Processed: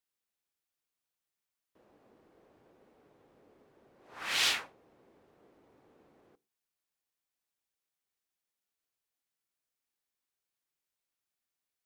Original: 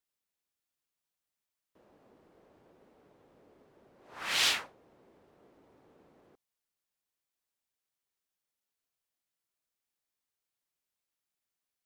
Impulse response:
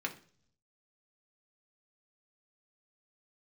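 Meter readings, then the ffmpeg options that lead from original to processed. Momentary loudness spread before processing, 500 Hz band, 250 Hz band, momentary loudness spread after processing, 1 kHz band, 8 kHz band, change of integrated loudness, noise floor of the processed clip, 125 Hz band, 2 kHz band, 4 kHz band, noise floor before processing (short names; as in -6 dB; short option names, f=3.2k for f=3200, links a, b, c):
11 LU, -1.5 dB, -1.5 dB, 11 LU, -1.5 dB, -1.5 dB, -1.0 dB, under -85 dBFS, -2.0 dB, -0.5 dB, -1.0 dB, under -85 dBFS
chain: -filter_complex "[0:a]asplit=2[a][b];[1:a]atrim=start_sample=2205,afade=t=out:st=0.18:d=0.01,atrim=end_sample=8379[c];[b][c]afir=irnorm=-1:irlink=0,volume=-14.5dB[d];[a][d]amix=inputs=2:normalize=0,volume=-2.5dB"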